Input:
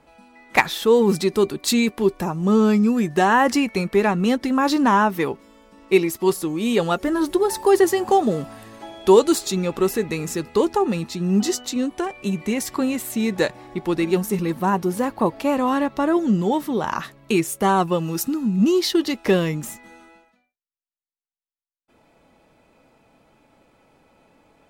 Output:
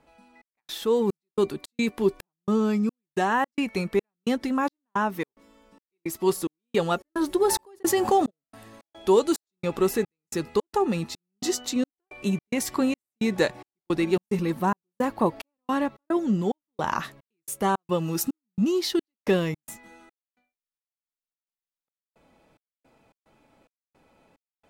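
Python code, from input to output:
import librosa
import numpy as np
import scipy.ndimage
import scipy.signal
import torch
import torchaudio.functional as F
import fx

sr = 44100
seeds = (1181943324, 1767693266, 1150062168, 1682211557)

y = fx.rider(x, sr, range_db=3, speed_s=0.5)
y = fx.step_gate(y, sr, bpm=109, pattern='xxx..xxx..xx.', floor_db=-60.0, edge_ms=4.5)
y = fx.env_flatten(y, sr, amount_pct=50, at=(7.4, 8.29), fade=0.02)
y = y * librosa.db_to_amplitude(-4.5)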